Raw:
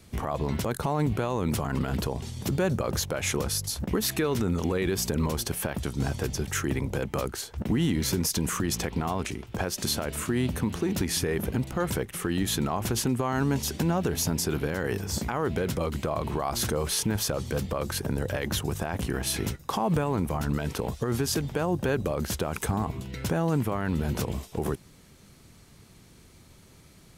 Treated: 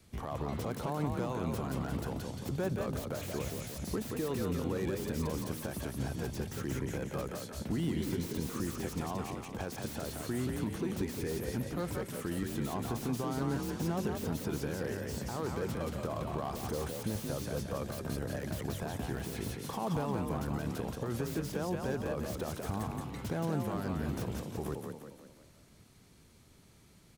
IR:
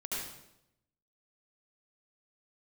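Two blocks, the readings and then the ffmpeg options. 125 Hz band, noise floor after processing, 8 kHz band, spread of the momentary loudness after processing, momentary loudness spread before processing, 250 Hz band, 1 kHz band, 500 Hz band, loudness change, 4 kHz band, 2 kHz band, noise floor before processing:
-7.5 dB, -60 dBFS, -13.5 dB, 5 LU, 5 LU, -6.5 dB, -7.5 dB, -7.0 dB, -8.0 dB, -13.0 dB, -9.5 dB, -54 dBFS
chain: -filter_complex "[0:a]asplit=7[a][b][c][d][e][f][g];[b]adelay=176,afreqshift=38,volume=-5dB[h];[c]adelay=352,afreqshift=76,volume=-11.7dB[i];[d]adelay=528,afreqshift=114,volume=-18.5dB[j];[e]adelay=704,afreqshift=152,volume=-25.2dB[k];[f]adelay=880,afreqshift=190,volume=-32dB[l];[g]adelay=1056,afreqshift=228,volume=-38.7dB[m];[a][h][i][j][k][l][m]amix=inputs=7:normalize=0,acrossover=split=570|990[n][o][p];[p]aeval=exprs='0.0224*(abs(mod(val(0)/0.0224+3,4)-2)-1)':c=same[q];[n][o][q]amix=inputs=3:normalize=0,volume=-8.5dB"

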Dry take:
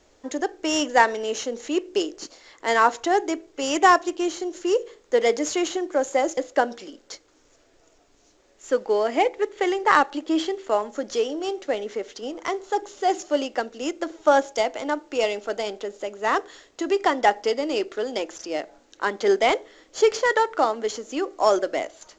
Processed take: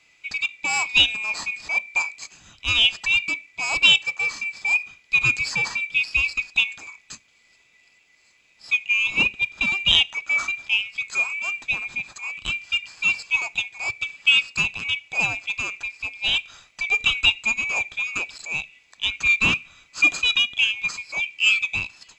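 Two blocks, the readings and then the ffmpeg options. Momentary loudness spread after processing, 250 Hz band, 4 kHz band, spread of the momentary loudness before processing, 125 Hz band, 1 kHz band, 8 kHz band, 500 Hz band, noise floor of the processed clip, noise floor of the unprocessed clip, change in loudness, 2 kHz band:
11 LU, -14.5 dB, +12.0 dB, 12 LU, n/a, -14.0 dB, 0.0 dB, -24.0 dB, -59 dBFS, -60 dBFS, +3.0 dB, +9.0 dB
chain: -af "afftfilt=real='real(if(lt(b,920),b+92*(1-2*mod(floor(b/92),2)),b),0)':imag='imag(if(lt(b,920),b+92*(1-2*mod(floor(b/92),2)),b),0)':win_size=2048:overlap=0.75"

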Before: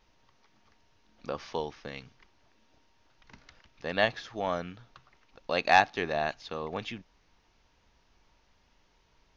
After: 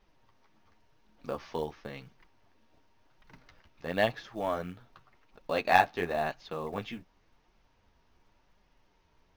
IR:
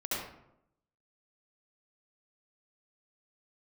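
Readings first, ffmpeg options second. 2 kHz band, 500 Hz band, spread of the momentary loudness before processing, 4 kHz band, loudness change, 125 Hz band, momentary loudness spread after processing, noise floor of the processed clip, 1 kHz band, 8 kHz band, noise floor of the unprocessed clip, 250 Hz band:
-3.0 dB, 0.0 dB, 21 LU, -5.0 dB, -1.5 dB, +0.5 dB, 20 LU, -69 dBFS, -1.0 dB, n/a, -68 dBFS, +0.5 dB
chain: -af "highshelf=f=2.5k:g=-8,flanger=delay=4.7:depth=8.8:regen=-22:speed=0.93:shape=triangular,acrusher=bits=7:mode=log:mix=0:aa=0.000001,volume=3.5dB"

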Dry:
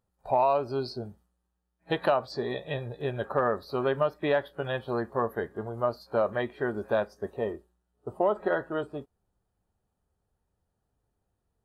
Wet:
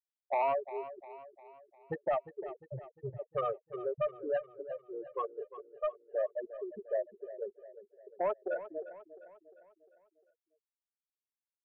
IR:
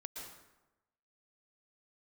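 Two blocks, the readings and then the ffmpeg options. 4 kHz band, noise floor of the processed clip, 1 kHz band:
under -20 dB, under -85 dBFS, -7.5 dB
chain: -filter_complex "[0:a]acrossover=split=3300[a][b];[b]acompressor=threshold=-58dB:ratio=4:attack=1:release=60[c];[a][c]amix=inputs=2:normalize=0,afftfilt=real='re*gte(hypot(re,im),0.2)':imag='im*gte(hypot(re,im),0.2)':win_size=1024:overlap=0.75,equalizer=f=320:w=1.2:g=-10,aeval=exprs='0.158*sin(PI/2*1.58*val(0)/0.158)':c=same,asplit=2[d][e];[e]aecho=0:1:352|704|1056|1408|1760:0.2|0.0978|0.0479|0.0235|0.0115[f];[d][f]amix=inputs=2:normalize=0,volume=-9dB"

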